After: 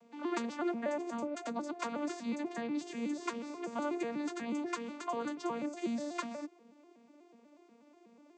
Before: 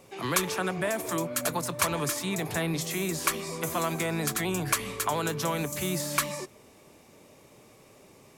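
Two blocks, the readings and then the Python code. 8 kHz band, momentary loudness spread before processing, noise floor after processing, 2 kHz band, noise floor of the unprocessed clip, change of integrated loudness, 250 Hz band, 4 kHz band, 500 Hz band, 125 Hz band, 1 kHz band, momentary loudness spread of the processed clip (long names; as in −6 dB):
−20.5 dB, 3 LU, −63 dBFS, −12.5 dB, −56 dBFS, −8.5 dB, −2.5 dB, −15.5 dB, −7.0 dB, −24.5 dB, −8.0 dB, 4 LU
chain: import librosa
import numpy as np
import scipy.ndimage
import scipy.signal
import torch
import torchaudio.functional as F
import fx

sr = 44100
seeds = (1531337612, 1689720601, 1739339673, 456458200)

y = fx.vocoder_arp(x, sr, chord='major triad', root=58, every_ms=122)
y = F.gain(torch.from_numpy(y), -6.0).numpy()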